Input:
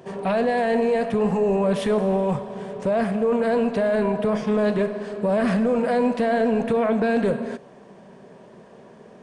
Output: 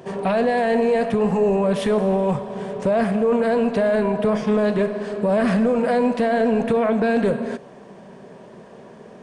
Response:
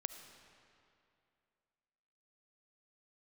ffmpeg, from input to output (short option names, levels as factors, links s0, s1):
-af "alimiter=limit=0.168:level=0:latency=1:release=316,volume=1.58"